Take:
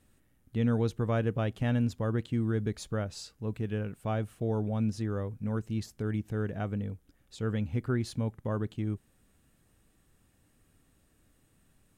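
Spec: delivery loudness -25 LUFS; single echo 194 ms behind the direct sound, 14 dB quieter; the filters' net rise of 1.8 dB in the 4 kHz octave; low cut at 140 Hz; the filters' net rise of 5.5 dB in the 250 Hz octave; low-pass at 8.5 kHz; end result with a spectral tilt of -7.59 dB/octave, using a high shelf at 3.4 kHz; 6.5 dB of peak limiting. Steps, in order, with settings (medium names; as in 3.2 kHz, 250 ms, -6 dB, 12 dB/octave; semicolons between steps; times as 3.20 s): high-pass 140 Hz; low-pass 8.5 kHz; peaking EQ 250 Hz +7 dB; treble shelf 3.4 kHz -8 dB; peaking EQ 4 kHz +8 dB; peak limiter -20.5 dBFS; delay 194 ms -14 dB; trim +7.5 dB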